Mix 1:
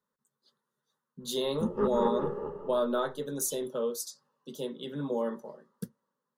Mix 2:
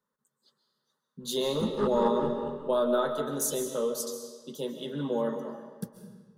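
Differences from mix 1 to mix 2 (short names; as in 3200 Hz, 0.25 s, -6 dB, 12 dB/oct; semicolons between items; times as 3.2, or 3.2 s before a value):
speech: send on; background: remove running mean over 11 samples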